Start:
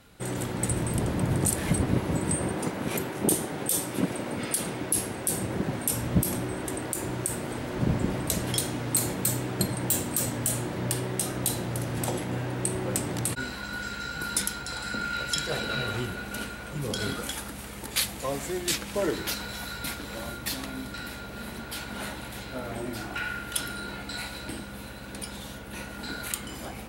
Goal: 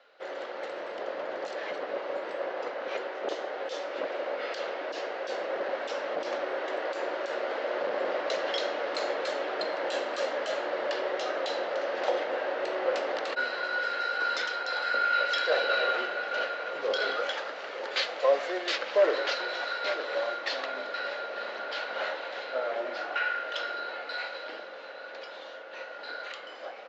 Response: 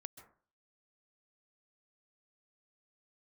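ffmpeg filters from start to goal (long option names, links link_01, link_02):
-filter_complex "[0:a]dynaudnorm=framelen=920:gausssize=11:maxgain=8dB,aresample=16000,asoftclip=type=hard:threshold=-17.5dB,aresample=44100,highpass=frequency=500:width=0.5412,highpass=frequency=500:width=1.3066,equalizer=frequency=550:width_type=q:width=4:gain=7,equalizer=frequency=930:width_type=q:width=4:gain=-5,equalizer=frequency=2400:width_type=q:width=4:gain=-5,equalizer=frequency=3500:width_type=q:width=4:gain=-5,lowpass=frequency=4000:width=0.5412,lowpass=frequency=4000:width=1.3066,asplit=2[link_01][link_02];[link_02]adelay=900,lowpass=frequency=970:poles=1,volume=-11dB,asplit=2[link_03][link_04];[link_04]adelay=900,lowpass=frequency=970:poles=1,volume=0.39,asplit=2[link_05][link_06];[link_06]adelay=900,lowpass=frequency=970:poles=1,volume=0.39,asplit=2[link_07][link_08];[link_08]adelay=900,lowpass=frequency=970:poles=1,volume=0.39[link_09];[link_01][link_03][link_05][link_07][link_09]amix=inputs=5:normalize=0" -ar 48000 -c:a libopus -b:a 64k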